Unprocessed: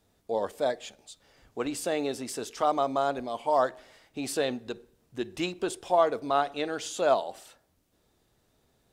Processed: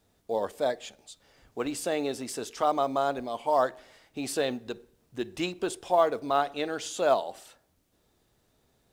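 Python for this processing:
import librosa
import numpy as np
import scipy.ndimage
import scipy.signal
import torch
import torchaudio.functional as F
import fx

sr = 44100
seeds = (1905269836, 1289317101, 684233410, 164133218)

y = fx.quant_companded(x, sr, bits=8)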